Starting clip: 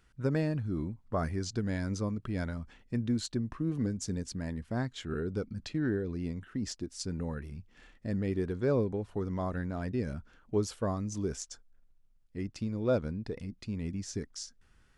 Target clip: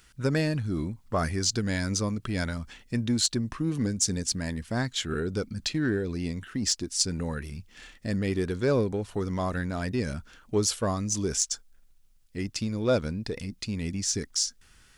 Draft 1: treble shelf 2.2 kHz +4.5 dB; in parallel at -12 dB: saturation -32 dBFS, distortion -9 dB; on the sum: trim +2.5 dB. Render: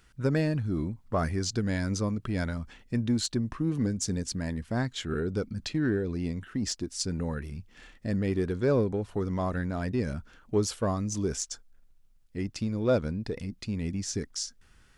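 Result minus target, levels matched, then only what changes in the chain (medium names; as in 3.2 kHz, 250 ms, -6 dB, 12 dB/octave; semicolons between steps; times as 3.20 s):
4 kHz band -5.0 dB
change: treble shelf 2.2 kHz +13.5 dB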